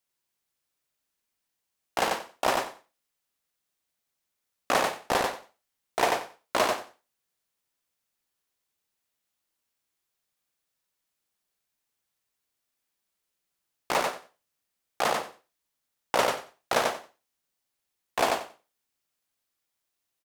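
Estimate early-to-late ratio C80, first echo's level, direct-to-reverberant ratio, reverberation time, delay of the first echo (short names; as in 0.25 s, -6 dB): none, -3.5 dB, none, none, 91 ms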